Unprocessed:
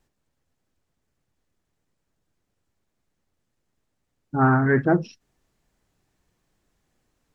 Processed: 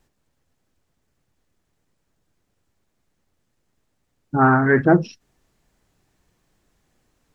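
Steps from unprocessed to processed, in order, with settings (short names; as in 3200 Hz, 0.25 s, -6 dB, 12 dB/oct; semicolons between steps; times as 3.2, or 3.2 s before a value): 4.37–4.8 low shelf 150 Hz -9.5 dB; gain +5 dB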